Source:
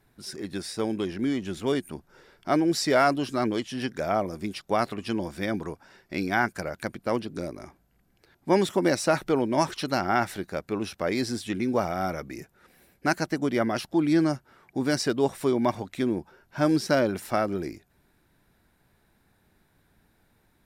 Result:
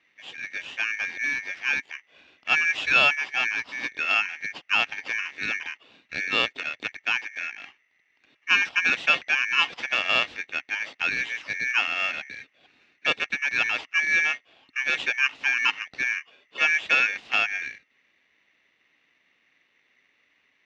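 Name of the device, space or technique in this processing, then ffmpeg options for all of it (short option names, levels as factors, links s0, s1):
ring modulator pedal into a guitar cabinet: -af "aeval=exprs='val(0)*sgn(sin(2*PI*2000*n/s))':c=same,highpass=76,equalizer=f=110:t=q:w=4:g=-5,equalizer=f=270:t=q:w=4:g=5,equalizer=f=790:t=q:w=4:g=4,equalizer=f=2700:t=q:w=4:g=9,lowpass=f=4500:w=0.5412,lowpass=f=4500:w=1.3066,volume=0.75"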